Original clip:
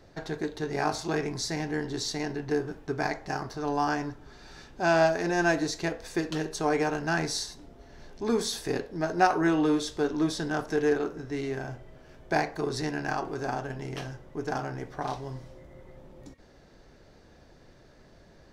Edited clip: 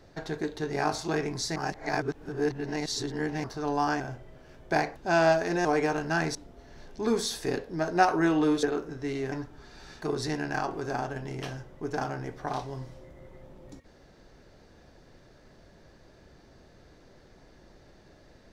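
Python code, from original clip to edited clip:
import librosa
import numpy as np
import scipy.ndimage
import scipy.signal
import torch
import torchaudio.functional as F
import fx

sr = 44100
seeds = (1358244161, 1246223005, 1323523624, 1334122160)

y = fx.edit(x, sr, fx.reverse_span(start_s=1.56, length_s=1.88),
    fx.swap(start_s=4.0, length_s=0.7, other_s=11.6, other_length_s=0.96),
    fx.cut(start_s=5.39, length_s=1.23),
    fx.cut(start_s=7.32, length_s=0.25),
    fx.cut(start_s=9.85, length_s=1.06), tone=tone)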